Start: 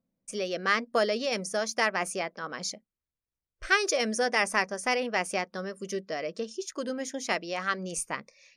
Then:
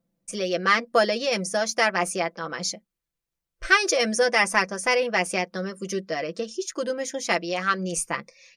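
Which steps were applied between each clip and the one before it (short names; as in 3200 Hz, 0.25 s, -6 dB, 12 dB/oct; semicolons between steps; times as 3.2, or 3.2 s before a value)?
comb 5.9 ms, depth 59%; gain +4 dB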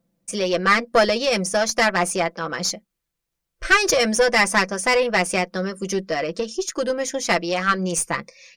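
one diode to ground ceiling -16.5 dBFS; gain +5.5 dB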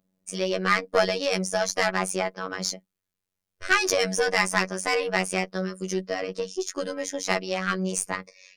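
robotiser 93.6 Hz; gain -3 dB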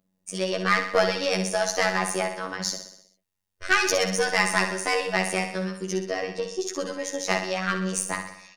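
feedback echo 63 ms, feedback 56%, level -8 dB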